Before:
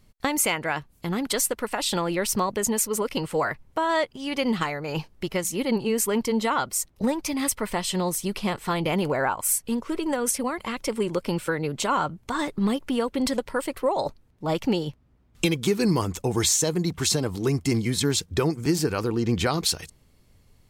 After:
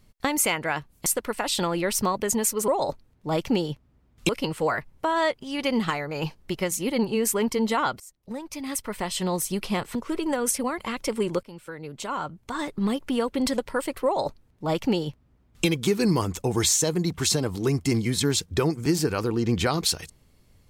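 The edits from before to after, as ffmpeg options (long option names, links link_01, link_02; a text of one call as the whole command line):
ffmpeg -i in.wav -filter_complex "[0:a]asplit=7[link_01][link_02][link_03][link_04][link_05][link_06][link_07];[link_01]atrim=end=1.062[link_08];[link_02]atrim=start=1.398:end=3.022[link_09];[link_03]atrim=start=13.848:end=15.462[link_10];[link_04]atrim=start=3.018:end=6.73,asetpts=PTS-STARTPTS,afade=type=out:start_time=3.708:duration=0.004:curve=hsin:silence=0.0668344[link_11];[link_05]atrim=start=6.73:end=8.682,asetpts=PTS-STARTPTS,afade=type=in:duration=1.41:silence=0.0668344[link_12];[link_06]atrim=start=9.748:end=11.23,asetpts=PTS-STARTPTS,afade=type=out:start_time=1.478:duration=0.004:curve=hsin:silence=0.105925[link_13];[link_07]atrim=start=11.23,asetpts=PTS-STARTPTS,afade=type=in:duration=1.75:silence=0.105925[link_14];[link_08][link_09]acrossfade=duration=0.004:curve1=hsin:curve2=hsin[link_15];[link_15][link_10]acrossfade=duration=0.004:curve1=hsin:curve2=hsin[link_16];[link_11][link_12]concat=n=2:v=0:a=1[link_17];[link_16][link_17]acrossfade=duration=0.004:curve1=hsin:curve2=hsin[link_18];[link_13][link_14]concat=n=2:v=0:a=1[link_19];[link_18][link_19]acrossfade=duration=0.004:curve1=hsin:curve2=hsin" out.wav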